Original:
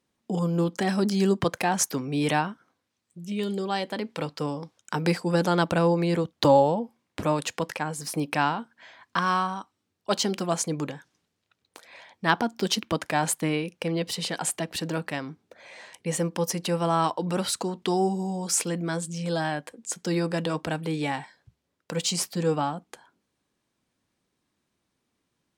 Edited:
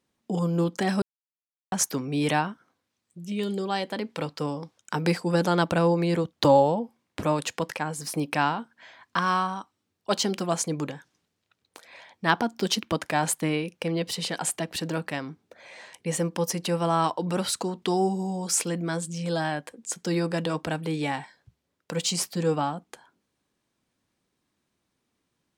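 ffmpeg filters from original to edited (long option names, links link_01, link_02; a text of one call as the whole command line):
ffmpeg -i in.wav -filter_complex "[0:a]asplit=3[link_01][link_02][link_03];[link_01]atrim=end=1.02,asetpts=PTS-STARTPTS,afade=type=out:start_time=1.016:duration=0.004:curve=hsin[link_04];[link_02]atrim=start=1.02:end=1.72,asetpts=PTS-STARTPTS,volume=0[link_05];[link_03]atrim=start=1.72,asetpts=PTS-STARTPTS,afade=type=in:duration=0.004:curve=hsin[link_06];[link_04][link_05][link_06]concat=n=3:v=0:a=1" out.wav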